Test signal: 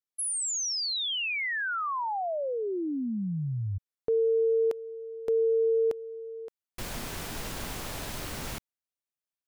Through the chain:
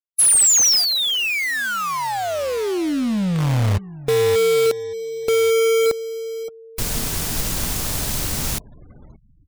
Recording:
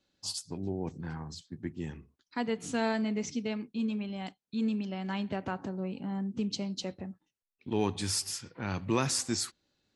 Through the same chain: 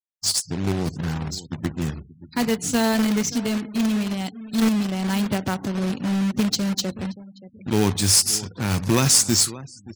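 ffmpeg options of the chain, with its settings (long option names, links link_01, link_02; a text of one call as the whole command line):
ffmpeg -i in.wav -filter_complex "[0:a]bass=frequency=250:gain=7,treble=frequency=4000:gain=10,asplit=2[link_01][link_02];[link_02]adelay=577,lowpass=frequency=1900:poles=1,volume=-17dB,asplit=2[link_03][link_04];[link_04]adelay=577,lowpass=frequency=1900:poles=1,volume=0.31,asplit=2[link_05][link_06];[link_06]adelay=577,lowpass=frequency=1900:poles=1,volume=0.31[link_07];[link_01][link_03][link_05][link_07]amix=inputs=4:normalize=0,acrusher=bits=2:mode=log:mix=0:aa=0.000001,afftfilt=real='re*gte(hypot(re,im),0.00355)':imag='im*gte(hypot(re,im),0.00355)':win_size=1024:overlap=0.75,volume=6.5dB" out.wav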